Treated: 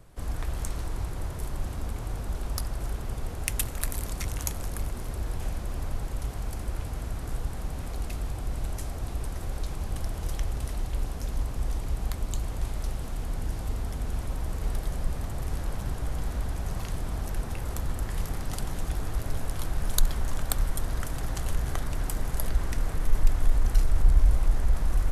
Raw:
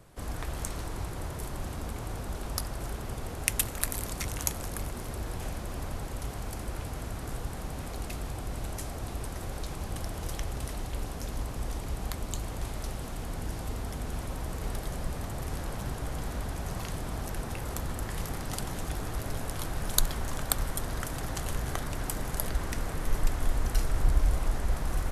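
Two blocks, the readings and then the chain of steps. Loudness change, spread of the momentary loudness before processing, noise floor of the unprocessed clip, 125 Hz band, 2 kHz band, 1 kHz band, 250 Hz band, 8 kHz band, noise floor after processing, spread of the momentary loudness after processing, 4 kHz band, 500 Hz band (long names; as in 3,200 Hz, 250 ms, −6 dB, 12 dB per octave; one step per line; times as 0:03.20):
+2.5 dB, 8 LU, −39 dBFS, +3.5 dB, −2.0 dB, −1.5 dB, −0.5 dB, −2.0 dB, −36 dBFS, 7 LU, −2.0 dB, −1.5 dB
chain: low-shelf EQ 72 Hz +10.5 dB
in parallel at −8 dB: hard clipping −17 dBFS, distortion −8 dB
on the sum: level −4.5 dB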